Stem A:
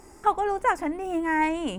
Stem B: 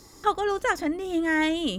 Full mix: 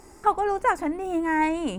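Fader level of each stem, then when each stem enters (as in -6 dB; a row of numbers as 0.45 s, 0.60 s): +0.5 dB, -16.5 dB; 0.00 s, 0.00 s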